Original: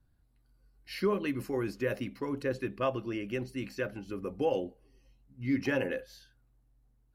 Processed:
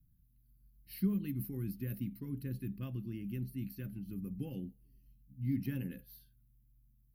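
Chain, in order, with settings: FFT filter 100 Hz 0 dB, 180 Hz +6 dB, 560 Hz -27 dB, 990 Hz -26 dB, 1.8 kHz -19 dB, 4.3 kHz -12 dB, 7.1 kHz -21 dB, 13 kHz +12 dB

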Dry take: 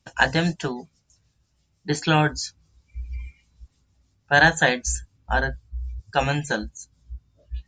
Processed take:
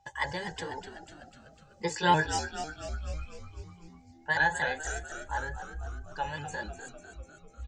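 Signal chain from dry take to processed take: sawtooth pitch modulation +2.5 st, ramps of 244 ms; Doppler pass-by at 2.52 s, 11 m/s, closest 10 m; in parallel at -3 dB: compressor with a negative ratio -43 dBFS, ratio -1; on the sum: comb 2 ms, depth 64%; small resonant body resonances 850/1700 Hz, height 17 dB, ringing for 90 ms; whistle 800 Hz -57 dBFS; on a send: frequency-shifting echo 249 ms, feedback 61%, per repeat -79 Hz, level -10 dB; on the sum: trim -7.5 dB

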